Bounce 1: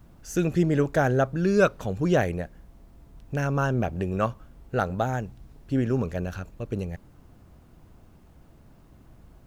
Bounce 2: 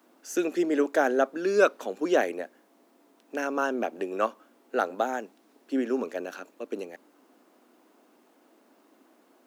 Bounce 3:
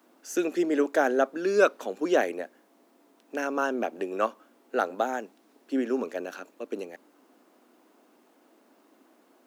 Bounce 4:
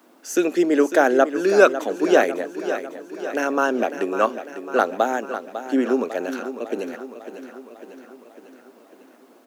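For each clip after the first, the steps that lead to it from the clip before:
steep high-pass 250 Hz 48 dB/oct
nothing audible
feedback echo 0.55 s, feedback 58%, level -11 dB; gain +7 dB

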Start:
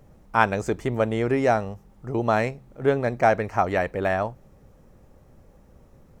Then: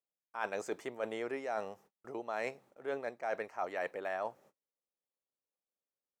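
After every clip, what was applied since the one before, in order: HPF 430 Hz 12 dB/oct; gate -54 dBFS, range -37 dB; reverse; compressor 12:1, threshold -28 dBFS, peak gain reduction 16 dB; reverse; gain -5 dB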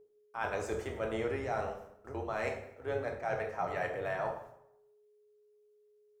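octaver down 2 oct, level -1 dB; whine 420 Hz -58 dBFS; plate-style reverb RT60 0.75 s, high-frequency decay 0.75×, DRR 1 dB

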